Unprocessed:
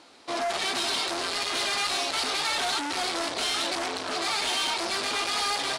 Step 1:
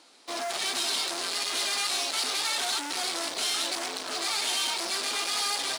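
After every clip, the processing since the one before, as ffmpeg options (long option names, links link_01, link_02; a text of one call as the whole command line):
ffmpeg -i in.wav -filter_complex "[0:a]asplit=2[link_01][link_02];[link_02]acrusher=bits=4:dc=4:mix=0:aa=0.000001,volume=-10dB[link_03];[link_01][link_03]amix=inputs=2:normalize=0,highpass=180,highshelf=frequency=4300:gain=10.5,volume=-6.5dB" out.wav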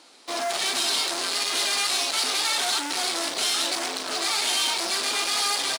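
ffmpeg -i in.wav -filter_complex "[0:a]asplit=2[link_01][link_02];[link_02]adelay=42,volume=-12dB[link_03];[link_01][link_03]amix=inputs=2:normalize=0,volume=4dB" out.wav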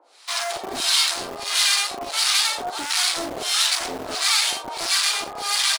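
ffmpeg -i in.wav -filter_complex "[0:a]acrossover=split=900[link_01][link_02];[link_01]aeval=exprs='val(0)*(1-1/2+1/2*cos(2*PI*1.5*n/s))':channel_layout=same[link_03];[link_02]aeval=exprs='val(0)*(1-1/2-1/2*cos(2*PI*1.5*n/s))':channel_layout=same[link_04];[link_03][link_04]amix=inputs=2:normalize=0,acrossover=split=440[link_05][link_06];[link_05]acrusher=bits=6:mix=0:aa=0.000001[link_07];[link_07][link_06]amix=inputs=2:normalize=0,volume=7dB" out.wav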